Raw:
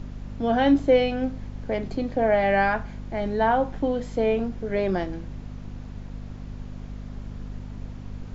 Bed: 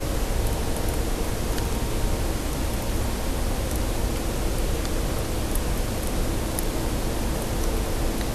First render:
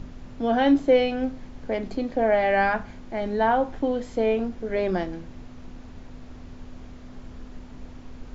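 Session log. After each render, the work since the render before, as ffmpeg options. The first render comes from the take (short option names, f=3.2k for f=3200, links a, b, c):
-af "bandreject=f=50:t=h:w=4,bandreject=f=100:t=h:w=4,bandreject=f=150:t=h:w=4,bandreject=f=200:t=h:w=4"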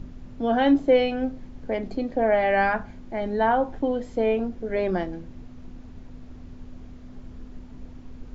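-af "afftdn=nr=6:nf=-43"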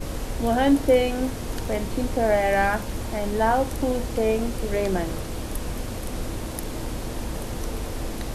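-filter_complex "[1:a]volume=-5dB[a];[0:a][a]amix=inputs=2:normalize=0"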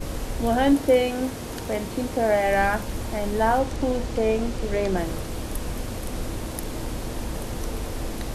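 -filter_complex "[0:a]asettb=1/sr,asplit=3[a][b][c];[a]atrim=end=0.734[d];[b]atrim=start=0.73:end=2.47,asetpts=PTS-STARTPTS,afade=t=in:d=0.004:c=qsin,afade=t=out:st=1.736:d=0.004:c=qsin,highpass=f=100:p=1[e];[c]atrim=start=2.466[f];[d][e]acrossfade=d=0.004:c1=hsin:c2=qsin[g];[g][f]acrossfade=d=0.004:c1=qsin:c2=hsin,asettb=1/sr,asplit=3[h][i][j];[h]atrim=end=3.594[k];[i]atrim=start=3.59:end=4.97,asetpts=PTS-STARTPTS,afade=t=in:d=0.004:c=qsin,afade=t=out:st=1.376:d=0.004:c=qsin,acrossover=split=8300[l][m];[m]acompressor=threshold=-55dB:ratio=4:attack=1:release=60[n];[l][n]amix=inputs=2:normalize=0[o];[j]atrim=start=4.966[p];[k][o]acrossfade=d=0.004:c1=hsin:c2=qsin[q];[q][p]acrossfade=d=0.004:c1=qsin:c2=hsin"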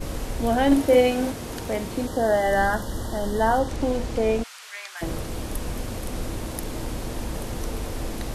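-filter_complex "[0:a]asettb=1/sr,asplit=3[a][b][c];[a]atrim=end=0.674[d];[b]atrim=start=0.67:end=1.32,asetpts=PTS-STARTPTS,afade=t=in:d=0.004:c=qsin,afade=t=out:st=0.646:d=0.004:c=qsin,asplit=2[e][f];[f]adelay=44,volume=-3dB[g];[e][g]amix=inputs=2:normalize=0,atrim=end_sample=28665[h];[c]atrim=start=1.316[i];[d][h]acrossfade=d=0.004:c1=hsin:c2=qsin[j];[j][i]acrossfade=d=0.004:c1=qsin:c2=hsin,asettb=1/sr,asplit=3[k][l][m];[k]atrim=end=2.074[n];[l]atrim=start=2.07:end=3.69,asetpts=PTS-STARTPTS,afade=t=in:d=0.004:c=qsin,afade=t=out:st=1.616:d=0.004:c=qsin,asuperstop=centerf=2400:order=20:qfactor=2.9[o];[m]atrim=start=3.686[p];[n][o]acrossfade=d=0.004:c1=hsin:c2=qsin[q];[q][p]acrossfade=d=0.004:c1=qsin:c2=hsin,asplit=3[r][s][t];[r]afade=t=out:st=4.42:d=0.02[u];[s]highpass=f=1.2k:w=0.5412,highpass=f=1.2k:w=1.3066,afade=t=in:st=4.42:d=0.02,afade=t=out:st=5.01:d=0.02[v];[t]afade=t=in:st=5.01:d=0.02[w];[u][v][w]amix=inputs=3:normalize=0"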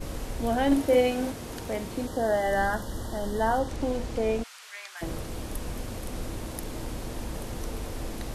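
-af "volume=-4.5dB"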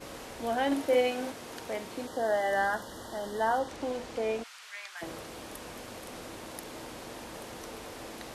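-af "highpass=f=580:p=1,highshelf=f=6.7k:g=-7"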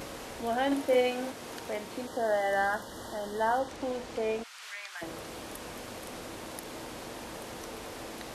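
-af "acompressor=mode=upward:threshold=-37dB:ratio=2.5"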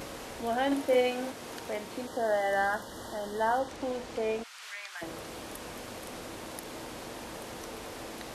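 -af anull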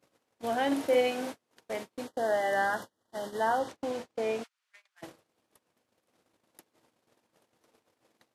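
-af "highpass=f=91:w=0.5412,highpass=f=91:w=1.3066,agate=range=-38dB:threshold=-37dB:ratio=16:detection=peak"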